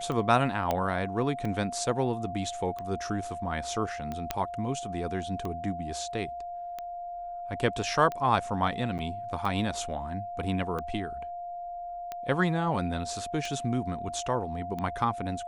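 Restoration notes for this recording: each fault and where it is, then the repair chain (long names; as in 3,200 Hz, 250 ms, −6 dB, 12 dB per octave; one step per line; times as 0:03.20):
scratch tick 45 rpm −22 dBFS
whistle 700 Hz −35 dBFS
0:00.71: click −14 dBFS
0:04.31: click −12 dBFS
0:08.98–0:08.99: drop-out 9.3 ms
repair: click removal
notch filter 700 Hz, Q 30
repair the gap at 0:08.98, 9.3 ms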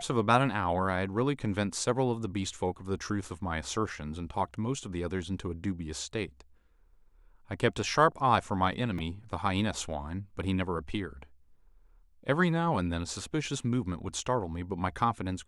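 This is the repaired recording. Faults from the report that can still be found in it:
none of them is left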